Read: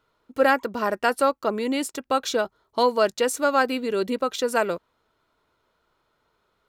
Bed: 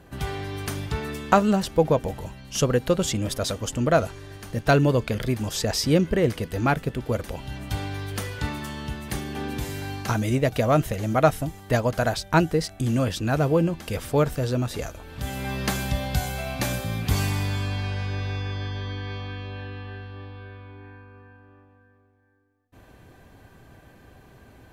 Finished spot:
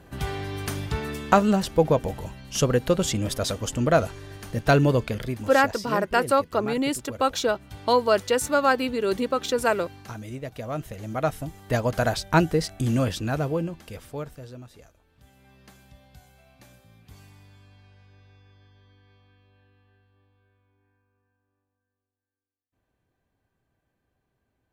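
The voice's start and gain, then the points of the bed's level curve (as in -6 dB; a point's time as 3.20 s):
5.10 s, 0.0 dB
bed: 4.95 s 0 dB
5.86 s -13 dB
10.55 s -13 dB
11.99 s 0 dB
13.03 s 0 dB
15.34 s -26 dB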